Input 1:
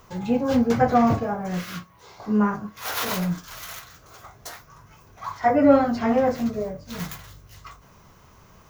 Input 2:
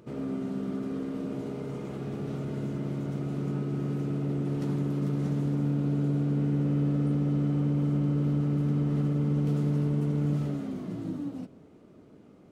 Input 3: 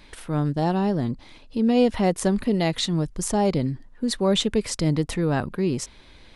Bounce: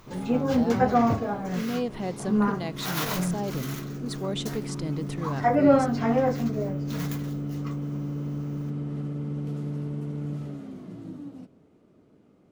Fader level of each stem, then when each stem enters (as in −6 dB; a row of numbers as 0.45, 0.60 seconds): −3.0, −5.0, −10.5 decibels; 0.00, 0.00, 0.00 seconds